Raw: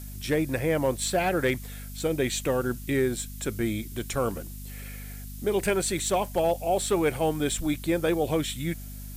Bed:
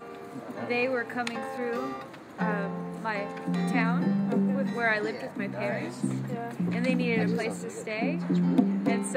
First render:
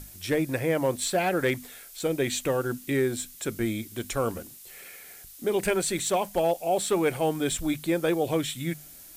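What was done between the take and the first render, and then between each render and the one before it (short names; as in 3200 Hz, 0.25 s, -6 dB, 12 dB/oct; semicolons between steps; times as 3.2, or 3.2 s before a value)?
notches 50/100/150/200/250 Hz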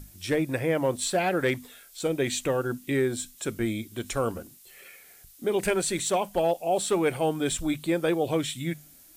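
noise print and reduce 6 dB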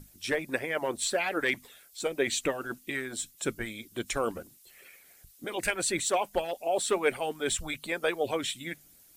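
dynamic EQ 2100 Hz, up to +4 dB, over -42 dBFS, Q 0.96; harmonic-percussive split harmonic -17 dB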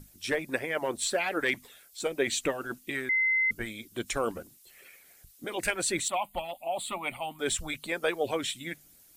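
3.09–3.51 bleep 2060 Hz -22.5 dBFS; 6.08–7.39 fixed phaser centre 1600 Hz, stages 6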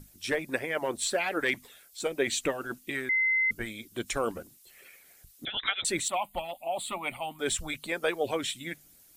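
5.45–5.85 inverted band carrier 3800 Hz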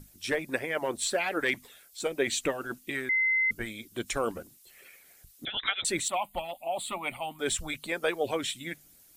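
nothing audible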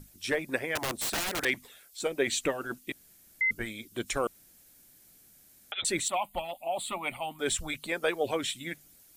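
0.75–1.45 wrapped overs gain 25.5 dB; 2.92–3.41 room tone; 4.27–5.72 room tone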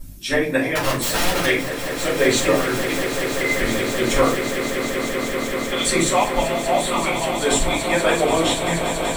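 on a send: swelling echo 0.192 s, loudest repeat 8, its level -12.5 dB; on the sum: shoebox room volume 210 m³, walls furnished, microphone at 5.6 m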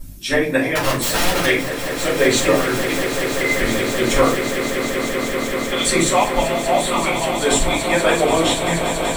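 gain +2 dB; limiter -3 dBFS, peak gain reduction 1.5 dB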